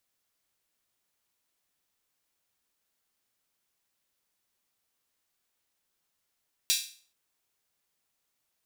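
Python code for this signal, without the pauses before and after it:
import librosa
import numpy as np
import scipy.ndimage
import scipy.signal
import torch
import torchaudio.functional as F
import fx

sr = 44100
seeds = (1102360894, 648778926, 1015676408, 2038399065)

y = fx.drum_hat_open(sr, length_s=0.43, from_hz=3500.0, decay_s=0.43)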